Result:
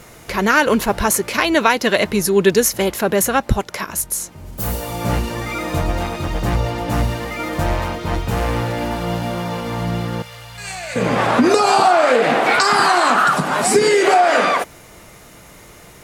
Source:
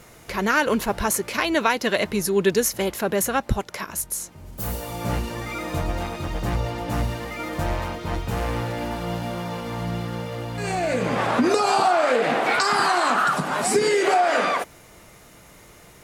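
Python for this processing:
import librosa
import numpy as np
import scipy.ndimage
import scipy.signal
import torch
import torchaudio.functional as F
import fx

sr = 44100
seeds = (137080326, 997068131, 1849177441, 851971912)

y = fx.tone_stack(x, sr, knobs='10-0-10', at=(10.22, 10.96))
y = F.gain(torch.from_numpy(y), 6.0).numpy()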